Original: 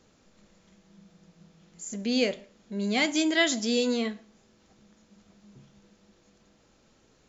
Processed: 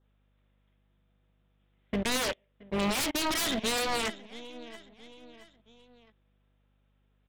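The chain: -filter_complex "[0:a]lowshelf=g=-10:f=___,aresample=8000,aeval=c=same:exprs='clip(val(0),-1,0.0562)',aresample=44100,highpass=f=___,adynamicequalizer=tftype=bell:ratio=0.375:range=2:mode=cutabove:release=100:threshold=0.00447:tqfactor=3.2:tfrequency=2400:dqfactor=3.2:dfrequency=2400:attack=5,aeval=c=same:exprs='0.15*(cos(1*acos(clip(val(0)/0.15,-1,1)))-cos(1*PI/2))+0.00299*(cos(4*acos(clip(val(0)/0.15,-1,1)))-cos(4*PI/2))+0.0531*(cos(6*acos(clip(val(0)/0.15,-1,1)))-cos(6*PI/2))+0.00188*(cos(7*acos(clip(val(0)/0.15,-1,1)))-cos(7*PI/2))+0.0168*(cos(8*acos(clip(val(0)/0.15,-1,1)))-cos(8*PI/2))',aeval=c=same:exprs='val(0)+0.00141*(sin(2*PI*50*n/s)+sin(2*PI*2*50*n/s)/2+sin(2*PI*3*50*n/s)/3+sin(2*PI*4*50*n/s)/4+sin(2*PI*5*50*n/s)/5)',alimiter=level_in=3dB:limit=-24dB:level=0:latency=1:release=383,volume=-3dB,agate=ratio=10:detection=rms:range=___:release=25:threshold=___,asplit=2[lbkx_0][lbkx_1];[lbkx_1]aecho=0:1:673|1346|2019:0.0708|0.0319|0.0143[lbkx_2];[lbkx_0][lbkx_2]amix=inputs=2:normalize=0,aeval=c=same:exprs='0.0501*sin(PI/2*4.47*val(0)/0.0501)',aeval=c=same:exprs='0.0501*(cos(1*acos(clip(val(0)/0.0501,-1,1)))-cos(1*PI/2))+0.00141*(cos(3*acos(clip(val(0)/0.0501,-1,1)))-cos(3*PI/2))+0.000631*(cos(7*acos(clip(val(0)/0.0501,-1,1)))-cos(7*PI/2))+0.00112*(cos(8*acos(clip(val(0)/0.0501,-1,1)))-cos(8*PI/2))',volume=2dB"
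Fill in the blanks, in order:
400, 220, -29dB, -48dB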